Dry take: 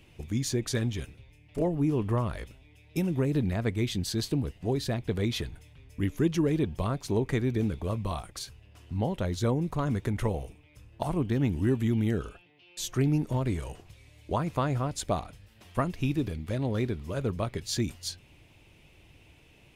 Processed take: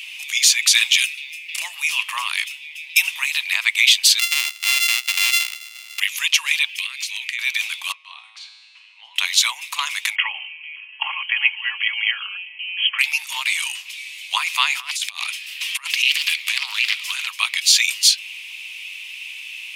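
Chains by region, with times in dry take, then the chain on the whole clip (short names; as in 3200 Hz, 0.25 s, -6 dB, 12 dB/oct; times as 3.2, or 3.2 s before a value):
0.59–2.03 tilt shelf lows -5 dB, about 1100 Hz + notch 3100 Hz, Q 29
4.19–6 sample sorter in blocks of 64 samples + HPF 52 Hz + compressor 2:1, threshold -35 dBFS
6.69–7.39 resonant high-pass 2100 Hz, resonance Q 2.1 + compressor 10:1, threshold -48 dBFS
7.92–9.16 tape spacing loss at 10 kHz 28 dB + resonator 110 Hz, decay 1.2 s, mix 80% + three-band squash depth 40%
10.15–12.99 brick-wall FIR band-pass 220–3300 Hz + comb 3.6 ms, depth 46%
14.8–17.27 HPF 860 Hz + negative-ratio compressor -45 dBFS + Doppler distortion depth 0.24 ms
whole clip: steep high-pass 1000 Hz 48 dB/oct; resonant high shelf 1900 Hz +9 dB, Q 3; maximiser +16 dB; gain -1 dB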